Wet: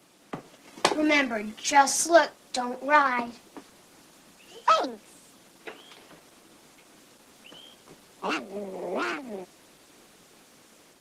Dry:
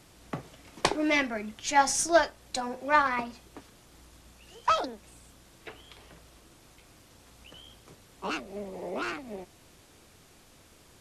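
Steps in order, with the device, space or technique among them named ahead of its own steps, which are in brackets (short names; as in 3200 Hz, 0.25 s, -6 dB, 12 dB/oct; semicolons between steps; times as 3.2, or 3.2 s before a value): video call (HPF 180 Hz 24 dB/oct; AGC gain up to 4.5 dB; Opus 16 kbps 48000 Hz)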